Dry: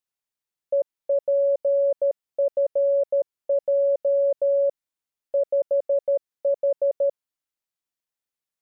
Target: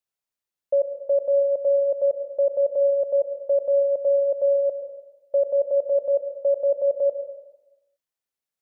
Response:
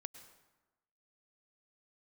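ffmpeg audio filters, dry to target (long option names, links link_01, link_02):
-filter_complex "[0:a]equalizer=frequency=600:width_type=o:width=0.77:gain=3[link_01];[1:a]atrim=start_sample=2205[link_02];[link_01][link_02]afir=irnorm=-1:irlink=0,volume=4dB"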